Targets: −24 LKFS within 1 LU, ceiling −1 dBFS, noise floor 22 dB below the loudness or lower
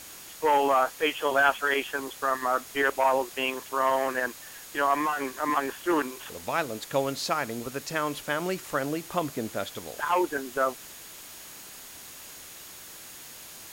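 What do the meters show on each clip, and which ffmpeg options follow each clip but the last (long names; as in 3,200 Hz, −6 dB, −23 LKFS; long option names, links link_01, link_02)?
interfering tone 6,700 Hz; level of the tone −53 dBFS; background noise floor −45 dBFS; target noise floor −50 dBFS; integrated loudness −27.5 LKFS; sample peak −11.5 dBFS; target loudness −24.0 LKFS
→ -af "bandreject=frequency=6700:width=30"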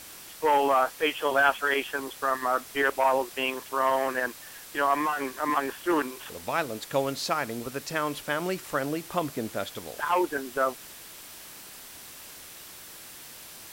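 interfering tone none found; background noise floor −46 dBFS; target noise floor −50 dBFS
→ -af "afftdn=noise_reduction=6:noise_floor=-46"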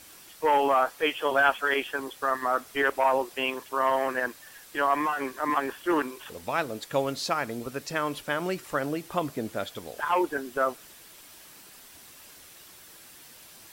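background noise floor −51 dBFS; integrated loudness −28.0 LKFS; sample peak −11.5 dBFS; target loudness −24.0 LKFS
→ -af "volume=4dB"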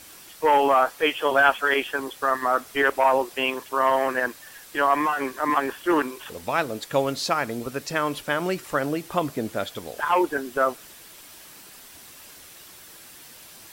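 integrated loudness −24.0 LKFS; sample peak −7.5 dBFS; background noise floor −47 dBFS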